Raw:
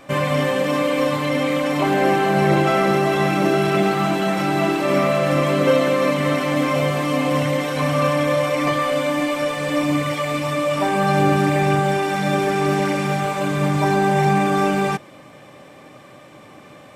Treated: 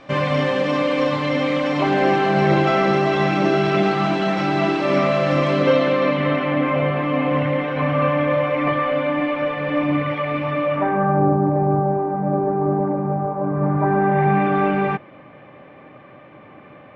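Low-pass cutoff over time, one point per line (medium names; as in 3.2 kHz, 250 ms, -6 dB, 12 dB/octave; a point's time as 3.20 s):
low-pass 24 dB/octave
5.51 s 5.4 kHz
6.63 s 2.7 kHz
10.65 s 2.7 kHz
11.34 s 1 kHz
13.37 s 1 kHz
14.47 s 2.6 kHz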